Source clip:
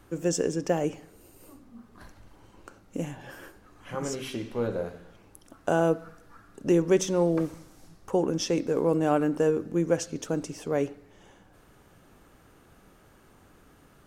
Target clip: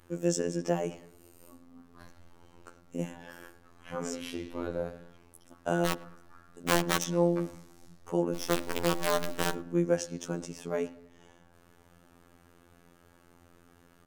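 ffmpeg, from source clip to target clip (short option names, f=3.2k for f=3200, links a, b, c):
-filter_complex "[0:a]adynamicequalizer=threshold=0.00891:dfrequency=420:dqfactor=4.9:tfrequency=420:tqfactor=4.9:attack=5:release=100:ratio=0.375:range=3:mode=cutabove:tftype=bell,asettb=1/sr,asplit=3[a][b][c];[a]atrim=end=5.854[d];[b]atrim=start=5.85:end=7.05,asetpts=PTS-STARTPTS,afade=t=in:d=0.004:c=qsin,afade=t=out:st=1.196:d=0.004:c=qsin,aeval=exprs='(mod(7.5*val(0)+1,2)-1)/7.5':c=same[e];[c]atrim=start=7.046[f];[d][e]acrossfade=d=0.004:c1=hsin:c2=qsin[g];[g][f]acrossfade=d=0.004:c1=qsin:c2=hsin,asplit=3[h][i][j];[h]afade=t=out:st=8.33:d=0.02[k];[i]acrusher=bits=4:dc=4:mix=0:aa=0.000001,afade=t=in:st=8.33:d=0.02,afade=t=out:st=9.53:d=0.02[l];[j]afade=t=in:st=9.53:d=0.02[m];[k][l][m]amix=inputs=3:normalize=0,afftfilt=real='hypot(re,im)*cos(PI*b)':imag='0':win_size=2048:overlap=0.75,asplit=2[n][o];[o]adelay=108,lowpass=f=1.5k:p=1,volume=-19dB,asplit=2[p][q];[q]adelay=108,lowpass=f=1.5k:p=1,volume=0.48,asplit=2[r][s];[s]adelay=108,lowpass=f=1.5k:p=1,volume=0.48,asplit=2[t][u];[u]adelay=108,lowpass=f=1.5k:p=1,volume=0.48[v];[n][p][r][t][v]amix=inputs=5:normalize=0"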